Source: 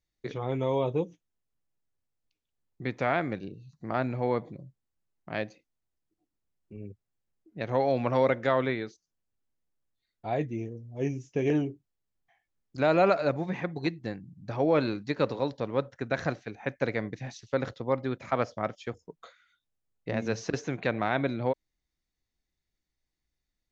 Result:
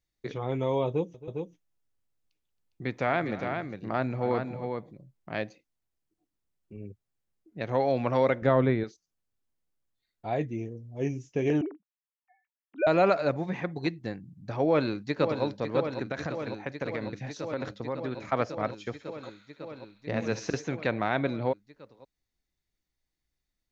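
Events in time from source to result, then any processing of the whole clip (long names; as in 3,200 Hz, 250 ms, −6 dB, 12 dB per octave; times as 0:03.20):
0:00.87–0:05.38: multi-tap delay 271/406 ms −16.5/−6 dB
0:08.42–0:08.84: spectral tilt −3 dB per octave
0:11.61–0:12.87: three sine waves on the formant tracks
0:14.65–0:15.44: delay throw 550 ms, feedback 85%, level −8 dB
0:16.02–0:18.26: downward compressor 4 to 1, threshold −28 dBFS
0:18.76–0:20.57: delay with a high-pass on its return 65 ms, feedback 69%, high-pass 2,400 Hz, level −8 dB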